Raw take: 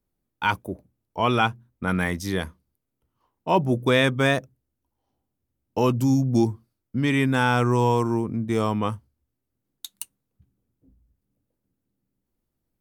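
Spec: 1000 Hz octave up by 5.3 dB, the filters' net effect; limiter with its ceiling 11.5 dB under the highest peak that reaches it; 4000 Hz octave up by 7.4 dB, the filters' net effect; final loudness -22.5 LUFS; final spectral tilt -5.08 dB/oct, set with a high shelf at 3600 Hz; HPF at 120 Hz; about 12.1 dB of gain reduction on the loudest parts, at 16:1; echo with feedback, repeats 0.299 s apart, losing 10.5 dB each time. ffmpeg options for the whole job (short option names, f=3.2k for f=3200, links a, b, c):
-af "highpass=120,equalizer=f=1k:t=o:g=5.5,highshelf=f=3.6k:g=6.5,equalizer=f=4k:t=o:g=5,acompressor=threshold=-23dB:ratio=16,alimiter=limit=-20.5dB:level=0:latency=1,aecho=1:1:299|598|897:0.299|0.0896|0.0269,volume=10dB"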